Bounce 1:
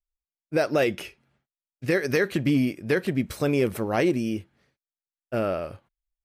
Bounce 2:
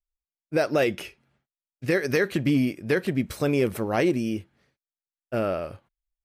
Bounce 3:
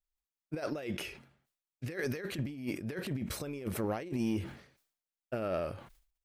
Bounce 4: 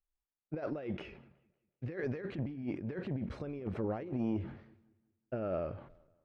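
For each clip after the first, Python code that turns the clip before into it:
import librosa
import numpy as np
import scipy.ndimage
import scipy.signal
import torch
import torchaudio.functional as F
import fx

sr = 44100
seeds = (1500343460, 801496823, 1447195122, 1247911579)

y1 = x
y2 = fx.over_compress(y1, sr, threshold_db=-27.0, ratio=-0.5)
y2 = 10.0 ** (-15.5 / 20.0) * np.tanh(y2 / 10.0 ** (-15.5 / 20.0))
y2 = fx.sustainer(y2, sr, db_per_s=100.0)
y2 = y2 * librosa.db_to_amplitude(-7.0)
y3 = fx.spacing_loss(y2, sr, db_at_10k=39)
y3 = fx.echo_filtered(y3, sr, ms=186, feedback_pct=40, hz=4000.0, wet_db=-23)
y3 = fx.transformer_sat(y3, sr, knee_hz=250.0)
y3 = y3 * librosa.db_to_amplitude(1.0)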